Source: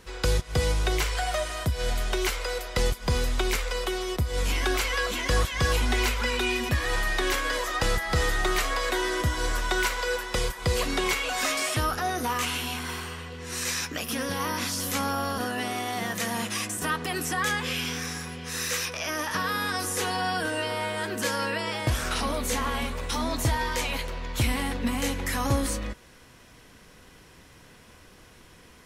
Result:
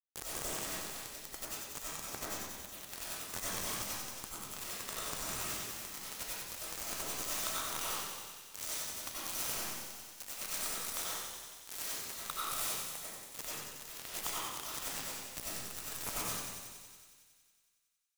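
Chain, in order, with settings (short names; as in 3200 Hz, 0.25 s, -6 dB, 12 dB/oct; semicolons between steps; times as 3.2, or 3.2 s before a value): FFT band-reject 1300–5700 Hz; tilt shelf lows -7.5 dB; hard clip -25.5 dBFS, distortion -13 dB; whisperiser; time stretch by phase-locked vocoder 0.63×; bit-crush 4-bit; thin delay 92 ms, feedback 76%, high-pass 3000 Hz, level -5 dB; reverb RT60 1.6 s, pre-delay 55 ms, DRR -8 dB; gain -8.5 dB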